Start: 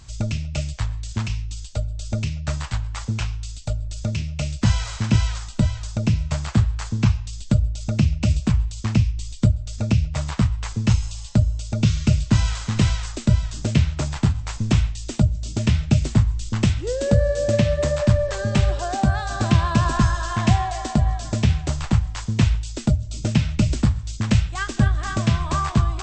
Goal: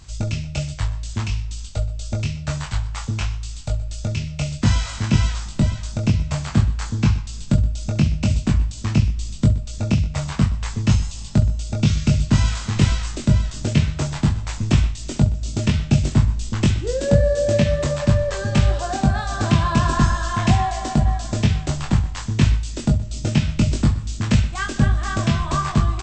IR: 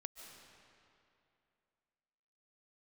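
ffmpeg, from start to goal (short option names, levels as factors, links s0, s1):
-filter_complex "[0:a]aecho=1:1:21|67:0.631|0.158,asplit=2[s0][s1];[1:a]atrim=start_sample=2205,adelay=123[s2];[s1][s2]afir=irnorm=-1:irlink=0,volume=0.211[s3];[s0][s3]amix=inputs=2:normalize=0"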